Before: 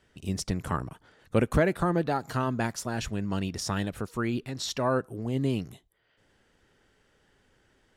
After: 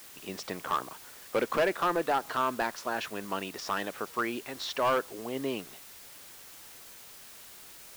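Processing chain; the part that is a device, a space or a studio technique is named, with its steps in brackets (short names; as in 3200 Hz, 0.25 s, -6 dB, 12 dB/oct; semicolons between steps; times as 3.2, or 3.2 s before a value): drive-through speaker (BPF 450–3400 Hz; bell 1100 Hz +4 dB 0.42 oct; hard clip -24 dBFS, distortion -10 dB; white noise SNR 16 dB); gain +3 dB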